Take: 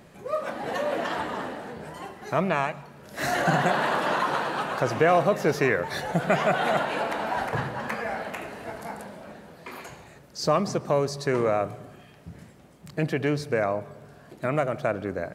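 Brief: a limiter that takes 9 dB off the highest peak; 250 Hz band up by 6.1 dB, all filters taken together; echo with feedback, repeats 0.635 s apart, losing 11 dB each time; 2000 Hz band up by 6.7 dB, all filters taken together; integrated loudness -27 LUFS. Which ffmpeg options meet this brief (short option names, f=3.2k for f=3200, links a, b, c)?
-af "equalizer=f=250:t=o:g=8.5,equalizer=f=2k:t=o:g=8.5,alimiter=limit=-12.5dB:level=0:latency=1,aecho=1:1:635|1270|1905:0.282|0.0789|0.0221,volume=-1.5dB"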